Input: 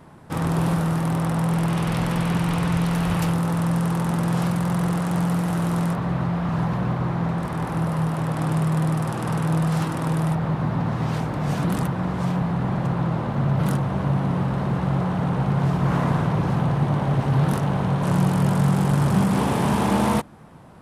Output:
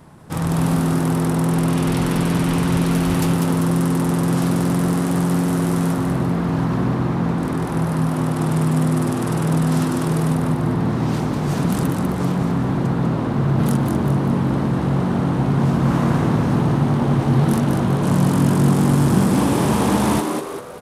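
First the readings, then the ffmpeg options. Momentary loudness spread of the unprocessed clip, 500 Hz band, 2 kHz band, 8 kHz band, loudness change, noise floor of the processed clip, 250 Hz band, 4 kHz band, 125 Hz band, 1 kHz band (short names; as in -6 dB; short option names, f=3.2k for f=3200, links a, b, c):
5 LU, +5.0 dB, +2.0 dB, +7.0 dB, +3.5 dB, -23 dBFS, +5.0 dB, +4.0 dB, +2.5 dB, +1.5 dB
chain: -filter_complex "[0:a]bass=f=250:g=3,treble=f=4k:g=6,asplit=2[a][b];[b]asplit=6[c][d][e][f][g][h];[c]adelay=196,afreqshift=94,volume=-5dB[i];[d]adelay=392,afreqshift=188,volume=-11.7dB[j];[e]adelay=588,afreqshift=282,volume=-18.5dB[k];[f]adelay=784,afreqshift=376,volume=-25.2dB[l];[g]adelay=980,afreqshift=470,volume=-32dB[m];[h]adelay=1176,afreqshift=564,volume=-38.7dB[n];[i][j][k][l][m][n]amix=inputs=6:normalize=0[o];[a][o]amix=inputs=2:normalize=0"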